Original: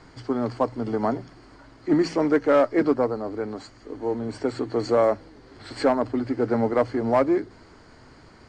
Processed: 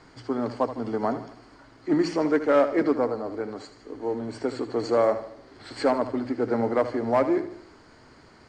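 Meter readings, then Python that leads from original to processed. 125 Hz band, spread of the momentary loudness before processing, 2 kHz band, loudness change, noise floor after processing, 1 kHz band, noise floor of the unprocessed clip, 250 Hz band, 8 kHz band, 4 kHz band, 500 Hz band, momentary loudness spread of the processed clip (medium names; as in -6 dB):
-4.5 dB, 13 LU, -1.0 dB, -2.0 dB, -53 dBFS, -1.5 dB, -51 dBFS, -2.0 dB, no reading, -1.0 dB, -1.5 dB, 15 LU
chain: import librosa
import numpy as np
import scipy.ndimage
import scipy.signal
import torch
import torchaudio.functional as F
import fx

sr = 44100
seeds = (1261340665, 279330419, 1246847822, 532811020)

p1 = fx.low_shelf(x, sr, hz=130.0, db=-6.5)
p2 = p1 + fx.echo_feedback(p1, sr, ms=77, feedback_pct=47, wet_db=-12.0, dry=0)
y = F.gain(torch.from_numpy(p2), -1.5).numpy()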